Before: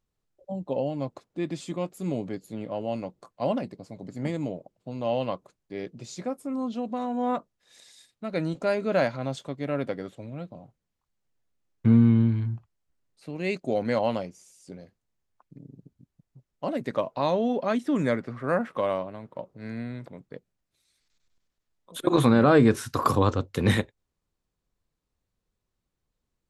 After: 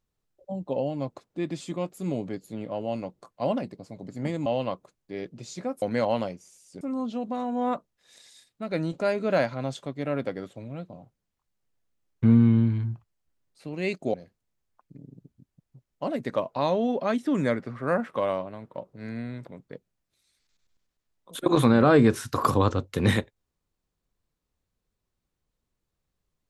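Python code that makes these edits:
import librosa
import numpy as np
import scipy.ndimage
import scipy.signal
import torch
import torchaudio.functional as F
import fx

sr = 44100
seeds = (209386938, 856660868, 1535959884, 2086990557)

y = fx.edit(x, sr, fx.cut(start_s=4.46, length_s=0.61),
    fx.move(start_s=13.76, length_s=0.99, to_s=6.43), tone=tone)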